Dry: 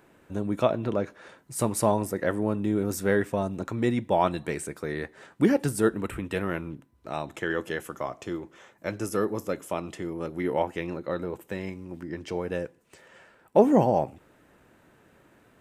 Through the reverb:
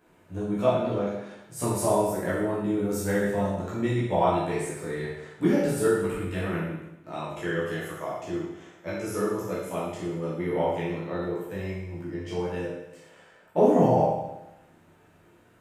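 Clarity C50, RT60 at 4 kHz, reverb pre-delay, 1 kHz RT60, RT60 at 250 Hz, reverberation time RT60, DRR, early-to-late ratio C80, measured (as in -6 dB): 0.5 dB, 0.90 s, 11 ms, 0.95 s, 0.95 s, 0.95 s, -8.0 dB, 3.5 dB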